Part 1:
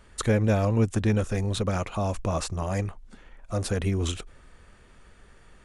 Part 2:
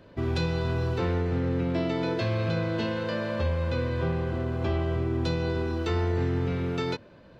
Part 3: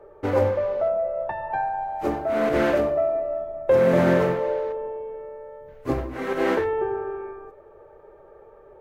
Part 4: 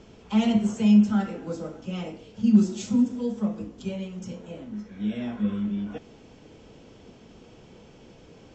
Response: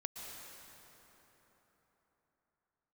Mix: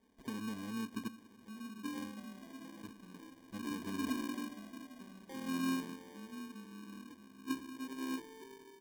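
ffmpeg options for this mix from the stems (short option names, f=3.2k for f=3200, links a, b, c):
-filter_complex "[0:a]aecho=1:1:4.5:0.46,alimiter=limit=-17dB:level=0:latency=1:release=120,flanger=delay=9.1:depth=1.6:regen=-78:speed=1.8:shape=triangular,volume=3dB,asplit=3[a][b][c];[a]atrim=end=1.08,asetpts=PTS-STARTPTS,afade=t=out:st=1.076:d=0.004:c=hsin[d];[b]atrim=start=1.08:end=2.83,asetpts=PTS-STARTPTS,volume=0[e];[c]atrim=start=2.83,asetpts=PTS-STARTPTS,afade=t=in:d=0.004:c=hsin[f];[d][e][f]concat=n=3:v=0:a=1,asplit=2[g][h];[h]volume=-13dB[i];[1:a]lowshelf=f=350:g=-8,adelay=1050,volume=-19dB,asplit=2[j][k];[k]volume=-3dB[l];[2:a]equalizer=f=230:w=0.75:g=10,adelay=1600,volume=-15.5dB[m];[3:a]equalizer=f=340:w=0.5:g=7,alimiter=limit=-18.5dB:level=0:latency=1:release=51,adelay=1150,volume=-13.5dB,asplit=2[n][o];[o]volume=-9.5dB[p];[g][j]amix=inputs=2:normalize=0,equalizer=f=4.5k:w=1.1:g=-10.5,alimiter=limit=-21.5dB:level=0:latency=1:release=315,volume=0dB[q];[4:a]atrim=start_sample=2205[r];[i][r]afir=irnorm=-1:irlink=0[s];[l][p]amix=inputs=2:normalize=0,aecho=0:1:629:1[t];[m][n][q][s][t]amix=inputs=5:normalize=0,asplit=3[u][v][w];[u]bandpass=f=270:t=q:w=8,volume=0dB[x];[v]bandpass=f=2.29k:t=q:w=8,volume=-6dB[y];[w]bandpass=f=3.01k:t=q:w=8,volume=-9dB[z];[x][y][z]amix=inputs=3:normalize=0,acrusher=samples=33:mix=1:aa=0.000001"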